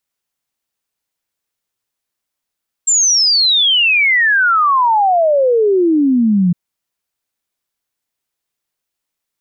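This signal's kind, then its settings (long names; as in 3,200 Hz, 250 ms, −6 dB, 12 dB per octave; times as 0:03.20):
exponential sine sweep 7,500 Hz → 170 Hz 3.66 s −9 dBFS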